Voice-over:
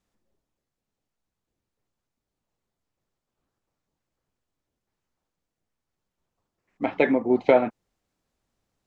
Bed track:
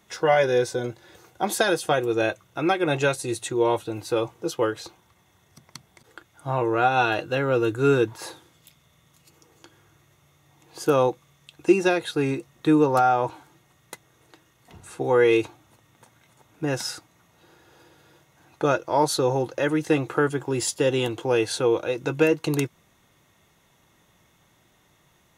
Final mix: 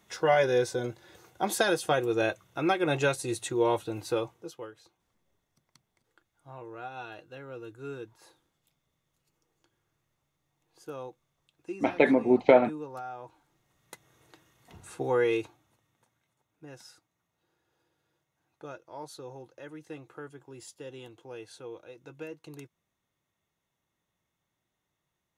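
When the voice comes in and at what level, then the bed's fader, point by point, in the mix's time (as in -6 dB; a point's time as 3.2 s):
5.00 s, -1.0 dB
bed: 4.12 s -4 dB
4.7 s -20.5 dB
13.33 s -20.5 dB
14.09 s -4 dB
14.92 s -4 dB
16.46 s -21.5 dB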